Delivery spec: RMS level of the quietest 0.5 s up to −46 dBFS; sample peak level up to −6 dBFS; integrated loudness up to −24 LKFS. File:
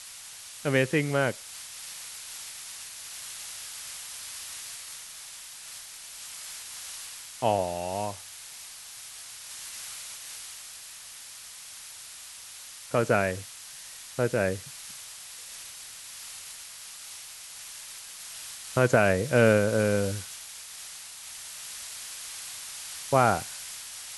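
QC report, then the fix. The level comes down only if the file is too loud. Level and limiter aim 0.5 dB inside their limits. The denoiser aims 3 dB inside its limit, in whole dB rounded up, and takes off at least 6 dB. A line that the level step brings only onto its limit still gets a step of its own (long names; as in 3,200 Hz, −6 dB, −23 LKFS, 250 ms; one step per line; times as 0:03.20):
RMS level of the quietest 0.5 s −45 dBFS: out of spec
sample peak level −6.5 dBFS: in spec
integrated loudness −31.5 LKFS: in spec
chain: broadband denoise 6 dB, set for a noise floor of −45 dBFS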